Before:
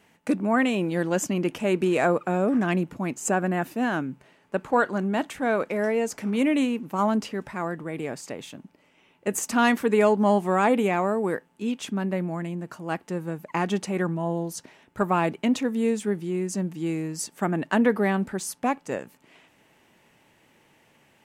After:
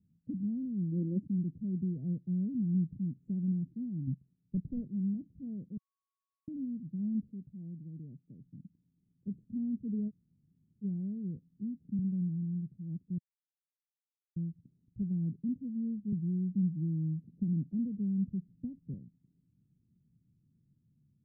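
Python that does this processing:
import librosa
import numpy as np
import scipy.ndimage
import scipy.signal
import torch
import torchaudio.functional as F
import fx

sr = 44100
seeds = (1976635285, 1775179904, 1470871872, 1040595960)

y = fx.spec_box(x, sr, start_s=0.92, length_s=0.3, low_hz=210.0, high_hz=660.0, gain_db=11)
y = fx.leveller(y, sr, passes=2, at=(4.07, 4.88))
y = fx.low_shelf(y, sr, hz=150.0, db=-10.5, at=(7.31, 8.42))
y = fx.band_squash(y, sr, depth_pct=40, at=(11.36, 11.99))
y = fx.band_squash(y, sr, depth_pct=70, at=(16.12, 18.94))
y = fx.edit(y, sr, fx.bleep(start_s=5.77, length_s=0.71, hz=1110.0, db=-10.0),
    fx.room_tone_fill(start_s=10.09, length_s=0.74, crossfade_s=0.04),
    fx.silence(start_s=13.18, length_s=1.18), tone=tone)
y = scipy.signal.sosfilt(scipy.signal.cheby2(4, 80, 980.0, 'lowpass', fs=sr, output='sos'), y)
y = fx.low_shelf(y, sr, hz=79.0, db=-10.5)
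y = y * 10.0 ** (4.0 / 20.0)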